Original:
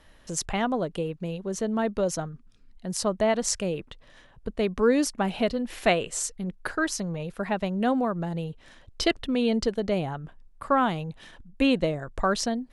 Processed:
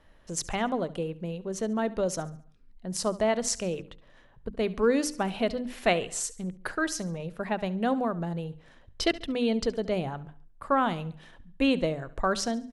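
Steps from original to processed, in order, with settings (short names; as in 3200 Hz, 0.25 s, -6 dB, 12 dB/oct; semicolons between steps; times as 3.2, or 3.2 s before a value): notches 50/100/150/200/250/300 Hz; on a send: feedback echo 70 ms, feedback 46%, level -18.5 dB; on the sum: mismatched tape noise reduction decoder only; gain -2 dB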